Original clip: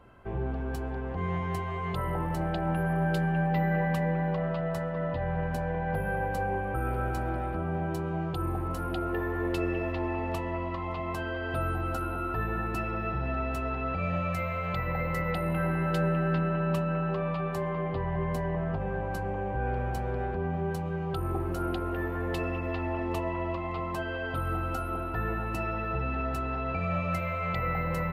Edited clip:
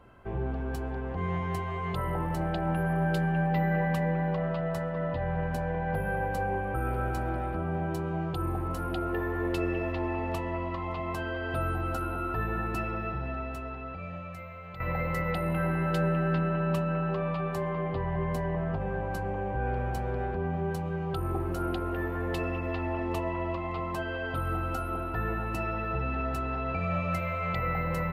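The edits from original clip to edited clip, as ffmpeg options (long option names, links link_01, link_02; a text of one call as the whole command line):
ffmpeg -i in.wav -filter_complex "[0:a]asplit=2[link_01][link_02];[link_01]atrim=end=14.8,asetpts=PTS-STARTPTS,afade=type=out:start_time=12.82:duration=1.98:curve=qua:silence=0.251189[link_03];[link_02]atrim=start=14.8,asetpts=PTS-STARTPTS,afade=type=in:duration=0.004:curve=hsin:silence=0.251189[link_04];[link_03][link_04]concat=n=2:v=0:a=1" out.wav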